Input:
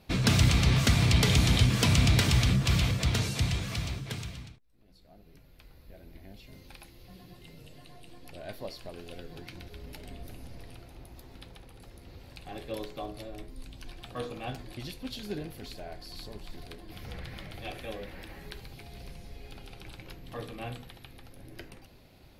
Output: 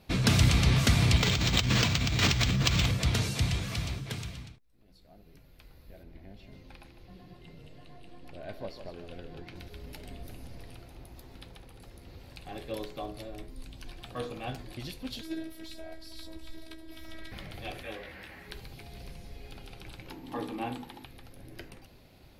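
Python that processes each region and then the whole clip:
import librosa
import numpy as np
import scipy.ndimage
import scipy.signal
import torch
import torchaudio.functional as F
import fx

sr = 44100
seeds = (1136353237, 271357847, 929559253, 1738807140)

y = fx.chain(x, sr, fx.over_compress(threshold_db=-27.0, ratio=-1.0),
    fx.high_shelf(hz=2700.0, db=9.5),
    fx.resample_linear(factor=4), at=(1.17, 2.86))
y = fx.chain(y, sr, fx.lowpass(hz=2500.0, slope=6),
    fx.echo_single(ms=153, db=-9.5), at=(6.03, 9.56))
y = fx.chain(y, sr, fx.robotise(hz=322.0),
    fx.doubler(ms=15.0, db=-7), at=(15.21, 17.32))
y = fx.chain(y, sr, fx.highpass(hz=52.0, slope=12),
    fx.peak_eq(hz=1800.0, db=7.5, octaves=1.5),
    fx.detune_double(cents=26), at=(17.83, 18.5))
y = fx.chain(y, sr, fx.low_shelf(hz=280.0, db=-8.0),
    fx.small_body(hz=(280.0, 860.0), ring_ms=30, db=16), at=(20.1, 21.05))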